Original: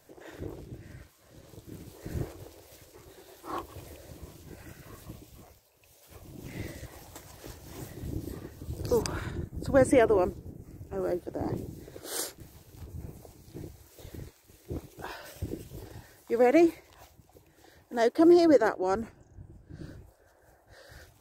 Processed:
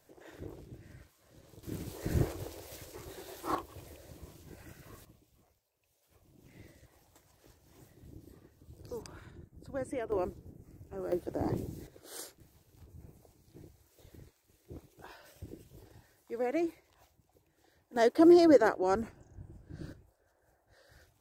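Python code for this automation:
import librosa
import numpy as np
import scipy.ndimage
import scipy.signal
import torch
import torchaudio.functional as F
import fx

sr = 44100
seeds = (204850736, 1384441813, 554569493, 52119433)

y = fx.gain(x, sr, db=fx.steps((0.0, -6.0), (1.63, 4.5), (3.55, -4.5), (5.05, -16.0), (10.12, -7.5), (11.12, -0.5), (11.87, -11.0), (17.96, -1.0), (19.93, -10.0)))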